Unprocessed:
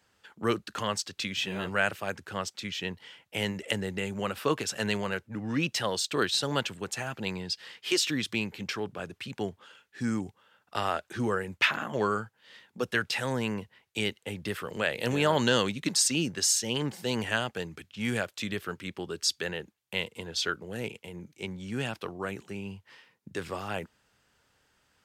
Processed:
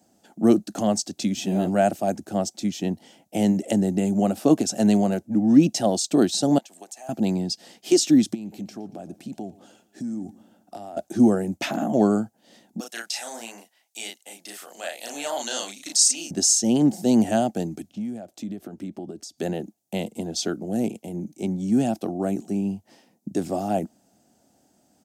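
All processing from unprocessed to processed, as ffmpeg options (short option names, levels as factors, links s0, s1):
-filter_complex "[0:a]asettb=1/sr,asplit=3[s0][s1][s2];[s0]atrim=end=6.584[s3];[s1]atrim=start=6.58:end=7.09,asetpts=PTS-STARTPTS,afade=t=in:d=0.004:c=qsin,afade=t=out:st=0.506:d=0.004:c=qsin,highpass=860,acompressor=threshold=0.00794:ratio=6:attack=3.2:release=140:knee=1:detection=peak,bandreject=f=1400:w=7.2[s4];[s2]atrim=start=7.086[s5];[s3][s4]acrossfade=d=0.004:c1=hsin:c2=qsin[s6];[s6][s5]acrossfade=d=0.004:c1=qsin:c2=hsin,asettb=1/sr,asplit=3[s7][s8][s9];[s7]atrim=end=8.344[s10];[s8]atrim=start=8.34:end=10.97,asetpts=PTS-STARTPTS,afade=t=in:d=0.004:c=qsin,afade=t=out:st=2.626:d=0.004:c=qsin,acompressor=threshold=0.00794:ratio=8:attack=3.2:release=140:knee=1:detection=peak,aecho=1:1:116|232|348|464:0.106|0.054|0.0276|0.0141,atrim=end_sample=115983[s11];[s9]atrim=start=10.966[s12];[s10][s11]acrossfade=d=0.004:c1=hsin:c2=qsin[s13];[s13][s12]acrossfade=d=0.004:c1=qsin:c2=hsin,asettb=1/sr,asplit=3[s14][s15][s16];[s14]atrim=end=12.804[s17];[s15]atrim=start=12.8:end=16.31,asetpts=PTS-STARTPTS,afade=t=in:d=0.004:c=qsin,afade=t=out:st=3.506:d=0.004:c=qsin,highpass=1400,asplit=2[s18][s19];[s19]adelay=35,volume=0.794[s20];[s18][s20]amix=inputs=2:normalize=0,atrim=end_sample=154791[s21];[s16]atrim=start=16.306[s22];[s17][s21]acrossfade=d=0.004:c1=hsin:c2=qsin[s23];[s23][s22]acrossfade=d=0.004:c1=qsin:c2=hsin,asettb=1/sr,asplit=3[s24][s25][s26];[s24]atrim=end=17.934[s27];[s25]atrim=start=17.93:end=19.38,asetpts=PTS-STARTPTS,afade=t=in:d=0.004:c=qsin,afade=t=out:st=1.446:d=0.004:c=qsin,highshelf=f=3800:g=-9.5,acompressor=threshold=0.00891:ratio=10:attack=3.2:release=140:knee=1:detection=peak[s28];[s26]atrim=start=19.376[s29];[s27][s28]acrossfade=d=0.004:c1=hsin:c2=qsin[s30];[s30][s29]acrossfade=d=0.004:c1=qsin:c2=hsin,highpass=84,acrossover=split=9600[s31][s32];[s32]acompressor=threshold=0.00178:ratio=4:attack=1:release=60[s33];[s31][s33]amix=inputs=2:normalize=0,firequalizer=gain_entry='entry(120,0);entry(210,13);entry(310,13);entry(450,-1);entry(700,13);entry(1000,-9);entry(1700,-12);entry(2900,-10);entry(6200,5)':delay=0.05:min_phase=1,volume=1.5"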